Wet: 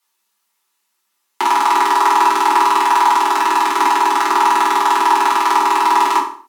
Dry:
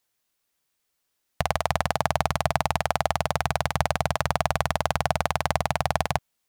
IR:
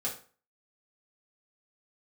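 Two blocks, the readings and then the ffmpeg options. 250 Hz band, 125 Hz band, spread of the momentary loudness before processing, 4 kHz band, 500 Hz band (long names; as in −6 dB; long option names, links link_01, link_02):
+8.0 dB, below −30 dB, 1 LU, +8.5 dB, +2.0 dB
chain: -filter_complex "[0:a]lowshelf=frequency=510:width_type=q:width=3:gain=-6,afreqshift=200[link_01];[1:a]atrim=start_sample=2205,afade=type=out:start_time=0.29:duration=0.01,atrim=end_sample=13230,asetrate=34839,aresample=44100[link_02];[link_01][link_02]afir=irnorm=-1:irlink=0,volume=4dB"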